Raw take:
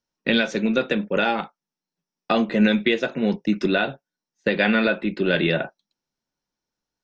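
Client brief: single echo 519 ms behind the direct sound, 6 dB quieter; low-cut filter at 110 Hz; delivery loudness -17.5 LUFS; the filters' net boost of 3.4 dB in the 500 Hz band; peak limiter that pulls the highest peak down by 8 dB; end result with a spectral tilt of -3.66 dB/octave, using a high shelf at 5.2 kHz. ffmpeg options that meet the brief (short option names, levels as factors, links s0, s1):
-af "highpass=110,equalizer=f=500:t=o:g=4,highshelf=f=5200:g=7,alimiter=limit=0.237:level=0:latency=1,aecho=1:1:519:0.501,volume=2.11"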